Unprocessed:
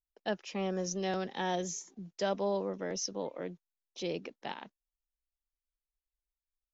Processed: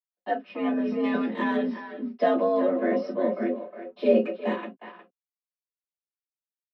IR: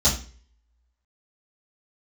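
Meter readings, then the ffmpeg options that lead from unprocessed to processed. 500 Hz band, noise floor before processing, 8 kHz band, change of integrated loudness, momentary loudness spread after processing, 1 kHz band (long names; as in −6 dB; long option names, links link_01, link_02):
+10.5 dB, below −85 dBFS, can't be measured, +9.5 dB, 12 LU, +7.5 dB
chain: -filter_complex "[0:a]bandreject=frequency=800:width=12,asplit=2[link_01][link_02];[link_02]adelay=360,highpass=300,lowpass=3400,asoftclip=type=hard:threshold=-29dB,volume=-10dB[link_03];[link_01][link_03]amix=inputs=2:normalize=0,adynamicequalizer=threshold=0.00447:dfrequency=660:dqfactor=0.97:tfrequency=660:tqfactor=0.97:attack=5:release=100:ratio=0.375:range=2.5:mode=cutabove:tftype=bell,aecho=1:1:6.2:0.81,dynaudnorm=framelen=450:gausssize=3:maxgain=7.5dB,aresample=11025,aeval=exprs='sgn(val(0))*max(abs(val(0))-0.00133,0)':channel_layout=same,aresample=44100,agate=range=-35dB:threshold=-53dB:ratio=16:detection=peak,acrossover=split=930[link_04][link_05];[link_05]asoftclip=type=tanh:threshold=-28.5dB[link_06];[link_04][link_06]amix=inputs=2:normalize=0[link_07];[1:a]atrim=start_sample=2205,atrim=end_sample=6615,asetrate=88200,aresample=44100[link_08];[link_07][link_08]afir=irnorm=-1:irlink=0,afreqshift=71,highpass=120,lowpass=2600,volume=-8dB"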